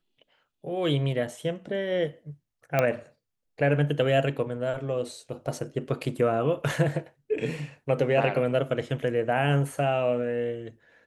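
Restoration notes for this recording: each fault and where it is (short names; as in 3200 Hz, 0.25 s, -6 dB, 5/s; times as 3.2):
2.79 pop -10 dBFS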